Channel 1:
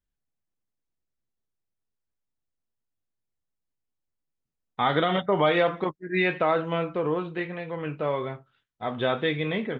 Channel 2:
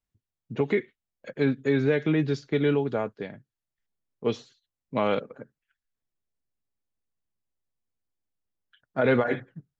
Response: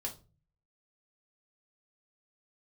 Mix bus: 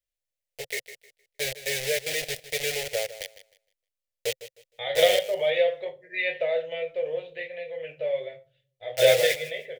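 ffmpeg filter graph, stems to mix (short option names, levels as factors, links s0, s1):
-filter_complex "[0:a]volume=0.794,asplit=2[s0][s1];[s1]volume=0.282[s2];[1:a]equalizer=f=220:w=0.86:g=-9,acrusher=bits=4:mix=0:aa=0.000001,volume=0.531,asplit=3[s3][s4][s5];[s4]volume=0.188[s6];[s5]apad=whole_len=431961[s7];[s0][s7]sidechaingate=range=0.178:threshold=0.0282:ratio=16:detection=peak[s8];[2:a]atrim=start_sample=2205[s9];[s2][s9]afir=irnorm=-1:irlink=0[s10];[s6]aecho=0:1:155|310|465|620:1|0.23|0.0529|0.0122[s11];[s8][s3][s10][s11]amix=inputs=4:normalize=0,lowshelf=f=340:g=-11.5,dynaudnorm=f=190:g=9:m=2.51,firequalizer=gain_entry='entry(130,0);entry(220,-29);entry(520,8);entry(1100,-28);entry(1900,2)':delay=0.05:min_phase=1"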